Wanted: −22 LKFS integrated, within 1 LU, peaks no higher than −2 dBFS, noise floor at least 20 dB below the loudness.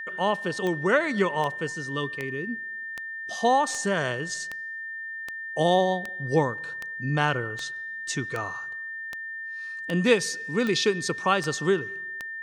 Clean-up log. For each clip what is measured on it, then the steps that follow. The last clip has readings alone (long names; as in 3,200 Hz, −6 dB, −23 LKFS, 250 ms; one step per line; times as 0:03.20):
number of clicks 16; interfering tone 1,800 Hz; level of the tone −33 dBFS; integrated loudness −27.0 LKFS; sample peak −8.5 dBFS; target loudness −22.0 LKFS
→ click removal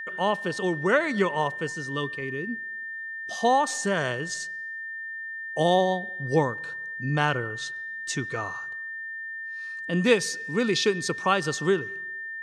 number of clicks 0; interfering tone 1,800 Hz; level of the tone −33 dBFS
→ notch filter 1,800 Hz, Q 30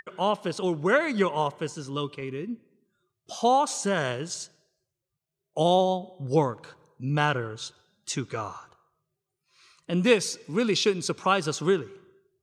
interfering tone none found; integrated loudness −26.5 LKFS; sample peak −8.5 dBFS; target loudness −22.0 LKFS
→ level +4.5 dB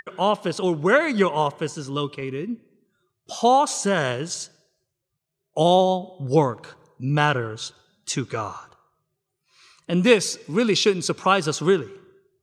integrated loudness −22.0 LKFS; sample peak −4.0 dBFS; background noise floor −80 dBFS